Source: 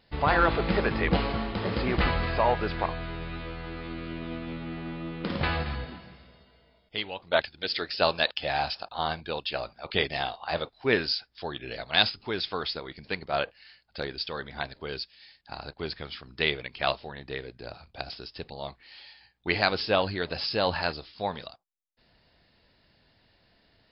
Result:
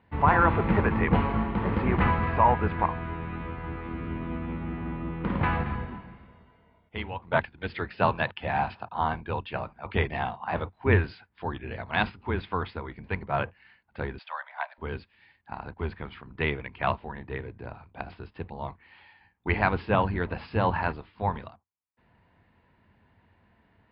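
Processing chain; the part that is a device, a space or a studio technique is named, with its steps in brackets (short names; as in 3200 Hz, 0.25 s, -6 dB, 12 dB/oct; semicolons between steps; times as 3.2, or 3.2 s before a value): sub-octave bass pedal (octaver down 2 oct, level +3 dB; speaker cabinet 68–2400 Hz, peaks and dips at 92 Hz +7 dB, 210 Hz +5 dB, 590 Hz -4 dB, 970 Hz +8 dB); 14.19–14.78 steep high-pass 570 Hz 96 dB/oct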